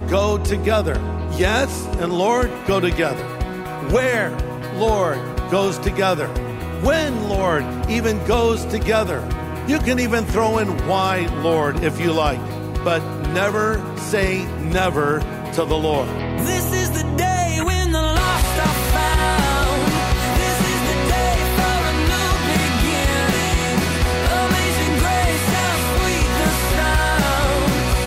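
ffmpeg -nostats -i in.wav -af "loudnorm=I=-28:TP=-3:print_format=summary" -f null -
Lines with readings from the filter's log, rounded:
Input Integrated:    -19.1 LUFS
Input True Peak:      -4.4 dBTP
Input LRA:             2.7 LU
Input Threshold:     -29.1 LUFS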